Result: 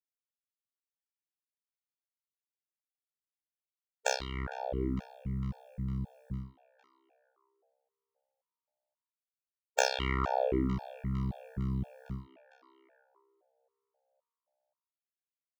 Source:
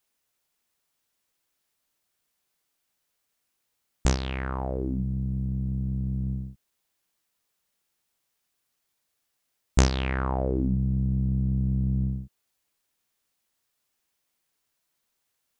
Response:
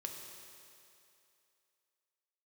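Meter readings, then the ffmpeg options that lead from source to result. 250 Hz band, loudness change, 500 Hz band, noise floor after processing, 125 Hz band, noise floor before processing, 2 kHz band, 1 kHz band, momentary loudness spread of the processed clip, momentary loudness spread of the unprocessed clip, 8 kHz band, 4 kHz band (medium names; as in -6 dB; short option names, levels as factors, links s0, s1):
-7.5 dB, -7.0 dB, -0.5 dB, under -85 dBFS, -10.5 dB, -78 dBFS, -0.5 dB, +0.5 dB, 12 LU, 7 LU, -3.0 dB, -1.0 dB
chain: -filter_complex "[0:a]agate=range=0.0224:threshold=0.0631:ratio=3:detection=peak,acrossover=split=360|4000[s0][s1][s2];[s0]acompressor=threshold=0.0158:ratio=5[s3];[s1]asplit=7[s4][s5][s6][s7][s8][s9][s10];[s5]adelay=455,afreqshift=68,volume=0.15[s11];[s6]adelay=910,afreqshift=136,volume=0.0912[s12];[s7]adelay=1365,afreqshift=204,volume=0.0556[s13];[s8]adelay=1820,afreqshift=272,volume=0.0339[s14];[s9]adelay=2275,afreqshift=340,volume=0.0207[s15];[s10]adelay=2730,afreqshift=408,volume=0.0126[s16];[s4][s11][s12][s13][s14][s15][s16]amix=inputs=7:normalize=0[s17];[s2]asoftclip=type=tanh:threshold=0.0841[s18];[s3][s17][s18]amix=inputs=3:normalize=0,afftfilt=real='re*gt(sin(2*PI*1.9*pts/sr)*(1-2*mod(floor(b*sr/1024/460),2)),0)':imag='im*gt(sin(2*PI*1.9*pts/sr)*(1-2*mod(floor(b*sr/1024/460),2)),0)':win_size=1024:overlap=0.75,volume=1.68"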